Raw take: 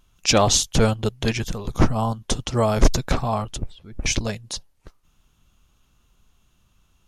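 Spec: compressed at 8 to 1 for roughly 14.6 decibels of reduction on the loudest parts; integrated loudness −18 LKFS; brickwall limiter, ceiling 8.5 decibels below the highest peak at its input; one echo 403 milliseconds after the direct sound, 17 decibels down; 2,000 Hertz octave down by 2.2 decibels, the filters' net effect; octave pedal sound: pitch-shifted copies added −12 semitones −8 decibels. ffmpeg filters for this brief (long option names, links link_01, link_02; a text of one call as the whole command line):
ffmpeg -i in.wav -filter_complex "[0:a]equalizer=frequency=2000:width_type=o:gain=-3,acompressor=threshold=-24dB:ratio=8,alimiter=limit=-19.5dB:level=0:latency=1,aecho=1:1:403:0.141,asplit=2[link_01][link_02];[link_02]asetrate=22050,aresample=44100,atempo=2,volume=-8dB[link_03];[link_01][link_03]amix=inputs=2:normalize=0,volume=13.5dB" out.wav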